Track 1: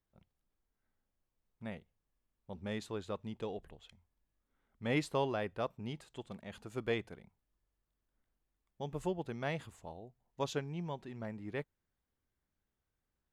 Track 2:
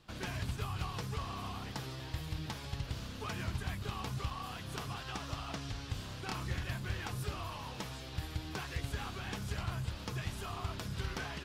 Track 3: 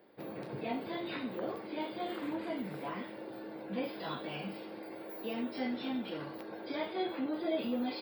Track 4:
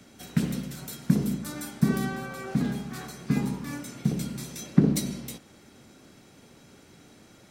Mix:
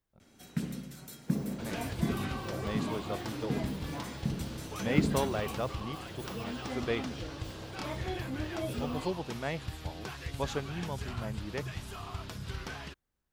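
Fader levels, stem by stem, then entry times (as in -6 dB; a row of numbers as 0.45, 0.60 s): +2.0, -1.0, -3.5, -8.5 dB; 0.00, 1.50, 1.10, 0.20 s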